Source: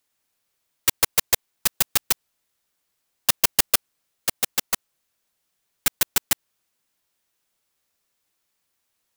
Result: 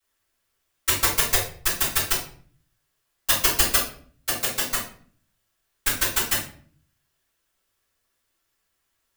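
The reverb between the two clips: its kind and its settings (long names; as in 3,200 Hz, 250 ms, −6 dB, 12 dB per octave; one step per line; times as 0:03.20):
rectangular room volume 51 cubic metres, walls mixed, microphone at 3.4 metres
level −13 dB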